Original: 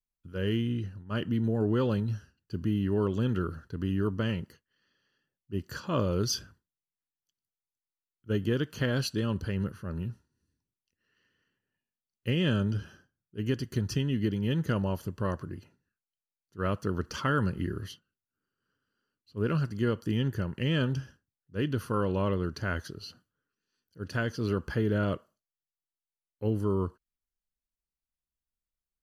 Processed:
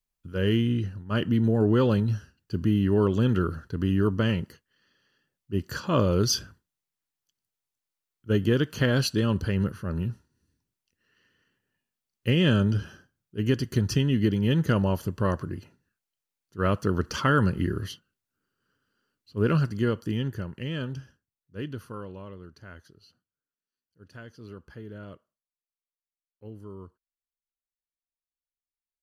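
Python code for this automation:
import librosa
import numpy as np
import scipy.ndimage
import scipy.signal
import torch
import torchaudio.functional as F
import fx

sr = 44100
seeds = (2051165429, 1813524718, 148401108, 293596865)

y = fx.gain(x, sr, db=fx.line((19.54, 5.5), (20.71, -4.5), (21.64, -4.5), (22.26, -14.0)))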